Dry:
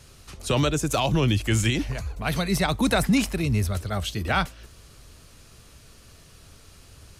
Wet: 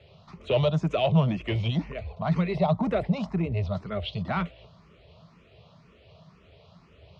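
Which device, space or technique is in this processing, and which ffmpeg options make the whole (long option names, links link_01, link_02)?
barber-pole phaser into a guitar amplifier: -filter_complex "[0:a]asettb=1/sr,asplit=3[link_01][link_02][link_03];[link_01]atrim=end=2.554[link_04];[link_02]atrim=start=2.55:end=3.57,asetpts=PTS-STARTPTS,afade=type=in:duration=0.004:curve=qsin,afade=type=out:start_time=1.016:duration=0.004:curve=qsin,equalizer=frequency=3200:width=0.87:gain=-8[link_05];[link_03]atrim=start=3.566[link_06];[link_04][link_05]acrossfade=duration=0.004:curve1=hsin:curve2=qsin[link_07];[link_07][link_06]acrossfade=duration=0.004:curve1=qsin:curve2=hsin,asplit=2[link_08][link_09];[link_09]afreqshift=2[link_10];[link_08][link_10]amix=inputs=2:normalize=1,asoftclip=type=tanh:threshold=-20dB,highpass=85,equalizer=frequency=170:width_type=q:width=4:gain=10,equalizer=frequency=290:width_type=q:width=4:gain=-7,equalizer=frequency=430:width_type=q:width=4:gain=3,equalizer=frequency=630:width_type=q:width=4:gain=9,equalizer=frequency=1000:width_type=q:width=4:gain=4,equalizer=frequency=1600:width_type=q:width=4:gain=-10,lowpass=frequency=3600:width=0.5412,lowpass=frequency=3600:width=1.3066"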